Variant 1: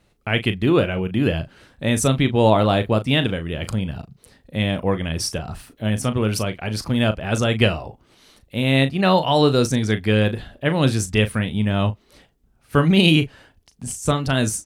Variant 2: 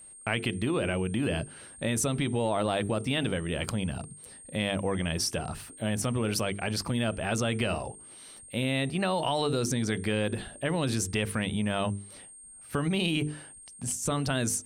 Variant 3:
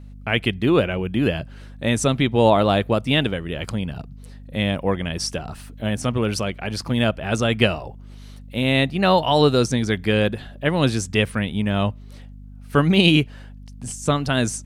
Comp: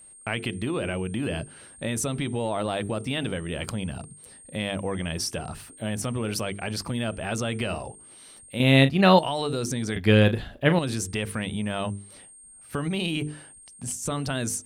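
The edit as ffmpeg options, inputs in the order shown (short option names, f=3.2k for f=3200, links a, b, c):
-filter_complex "[0:a]asplit=2[a][b];[1:a]asplit=3[c][d][e];[c]atrim=end=8.602[f];[a]atrim=start=8.598:end=9.192[g];[d]atrim=start=9.188:end=9.962[h];[b]atrim=start=9.958:end=10.792[i];[e]atrim=start=10.788[j];[f][g]acrossfade=d=0.004:c1=hsin:c2=hsin[k];[k][h]acrossfade=d=0.004:c1=hsin:c2=hsin[l];[l][i]acrossfade=d=0.004:c1=hsin:c2=hsin[m];[m][j]acrossfade=d=0.004:c1=hsin:c2=hsin"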